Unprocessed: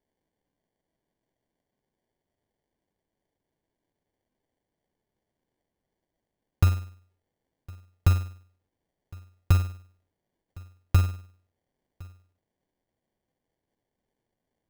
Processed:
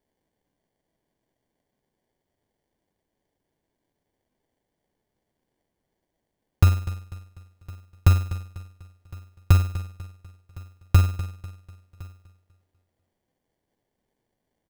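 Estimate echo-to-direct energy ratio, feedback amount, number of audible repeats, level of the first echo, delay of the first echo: -14.0 dB, 40%, 3, -15.0 dB, 247 ms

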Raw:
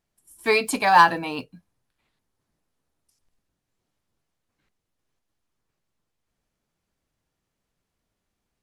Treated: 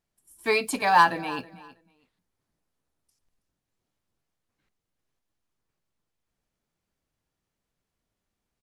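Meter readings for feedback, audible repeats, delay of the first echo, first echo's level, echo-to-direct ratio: 19%, 2, 323 ms, -18.5 dB, -18.5 dB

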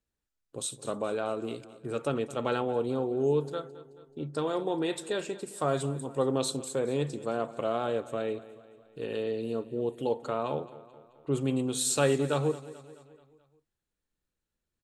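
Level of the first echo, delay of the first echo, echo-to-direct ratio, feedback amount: -17.5 dB, 216 ms, -16.0 dB, 53%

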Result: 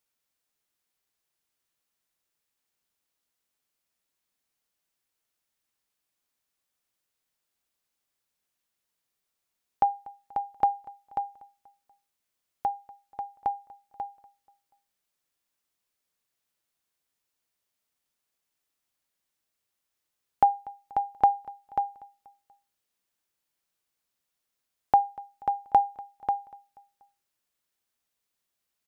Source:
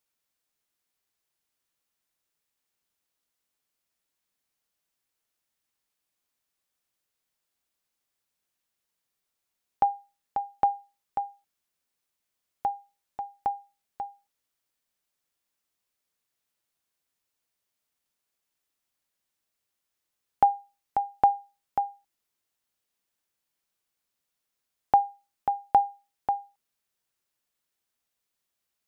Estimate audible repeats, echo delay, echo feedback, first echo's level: 3, 241 ms, 48%, -22.0 dB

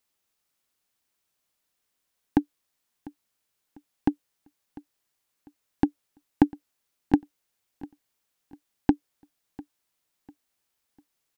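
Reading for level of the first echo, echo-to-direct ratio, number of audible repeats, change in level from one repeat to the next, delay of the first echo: -20.5 dB, -20.0 dB, 2, -9.5 dB, 698 ms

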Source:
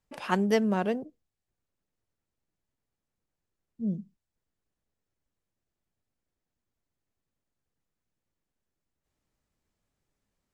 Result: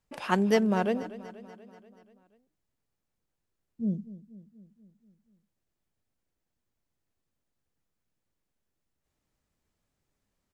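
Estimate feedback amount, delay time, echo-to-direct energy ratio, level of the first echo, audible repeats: 59%, 241 ms, -14.0 dB, -16.0 dB, 5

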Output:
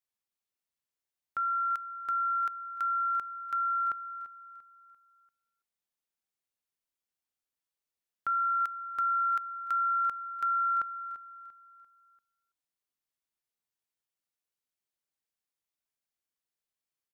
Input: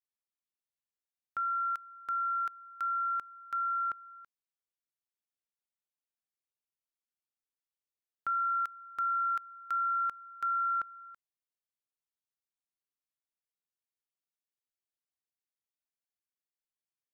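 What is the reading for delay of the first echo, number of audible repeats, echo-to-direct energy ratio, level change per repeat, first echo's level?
343 ms, 3, -14.0 dB, -7.5 dB, -15.0 dB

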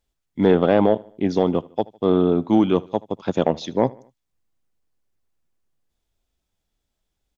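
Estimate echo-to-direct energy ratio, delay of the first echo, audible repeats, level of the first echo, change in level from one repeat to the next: -22.0 dB, 77 ms, 2, -23.0 dB, -6.5 dB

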